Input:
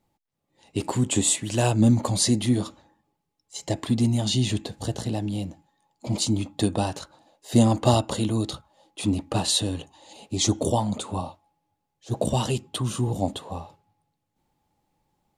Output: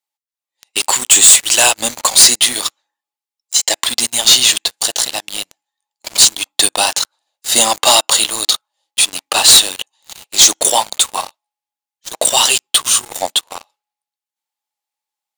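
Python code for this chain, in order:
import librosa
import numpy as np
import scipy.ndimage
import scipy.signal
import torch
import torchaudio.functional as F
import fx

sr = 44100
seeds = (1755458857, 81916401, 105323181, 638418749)

y = scipy.signal.sosfilt(scipy.signal.butter(2, 910.0, 'highpass', fs=sr, output='sos'), x)
y = fx.high_shelf(y, sr, hz=2100.0, db=11.5)
y = fx.leveller(y, sr, passes=5)
y = y * 10.0 ** (-3.5 / 20.0)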